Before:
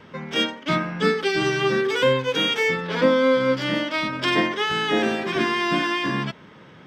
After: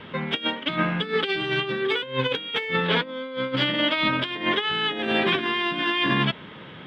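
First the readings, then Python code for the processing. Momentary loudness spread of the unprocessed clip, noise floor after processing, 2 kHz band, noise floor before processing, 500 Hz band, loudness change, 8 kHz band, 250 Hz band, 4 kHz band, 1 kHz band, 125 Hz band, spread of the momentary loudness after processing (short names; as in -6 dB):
5 LU, -42 dBFS, -1.0 dB, -47 dBFS, -6.0 dB, -2.0 dB, under -15 dB, -3.5 dB, +1.0 dB, -2.5 dB, -0.5 dB, 5 LU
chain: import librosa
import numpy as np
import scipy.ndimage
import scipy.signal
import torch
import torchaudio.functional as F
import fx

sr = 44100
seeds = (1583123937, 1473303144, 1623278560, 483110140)

y = fx.high_shelf_res(x, sr, hz=4500.0, db=-9.5, q=3.0)
y = fx.over_compress(y, sr, threshold_db=-24.0, ratio=-0.5)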